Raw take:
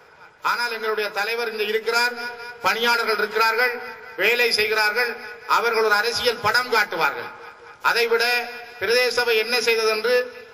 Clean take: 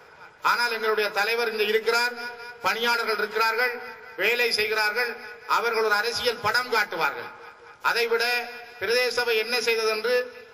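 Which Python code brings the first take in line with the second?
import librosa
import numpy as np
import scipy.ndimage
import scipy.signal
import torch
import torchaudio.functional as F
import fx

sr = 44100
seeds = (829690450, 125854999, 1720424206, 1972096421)

y = fx.fix_level(x, sr, at_s=1.96, step_db=-4.0)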